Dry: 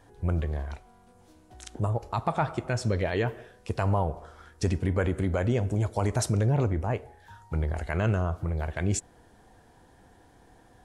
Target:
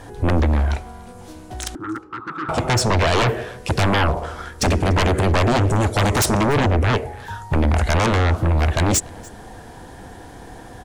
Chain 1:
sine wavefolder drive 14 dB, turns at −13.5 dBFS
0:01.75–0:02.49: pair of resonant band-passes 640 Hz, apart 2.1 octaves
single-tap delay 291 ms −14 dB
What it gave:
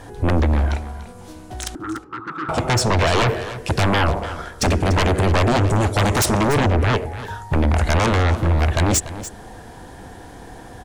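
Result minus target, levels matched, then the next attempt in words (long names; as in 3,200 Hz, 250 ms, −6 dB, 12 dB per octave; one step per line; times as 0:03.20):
echo-to-direct +10 dB
sine wavefolder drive 14 dB, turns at −13.5 dBFS
0:01.75–0:02.49: pair of resonant band-passes 640 Hz, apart 2.1 octaves
single-tap delay 291 ms −24 dB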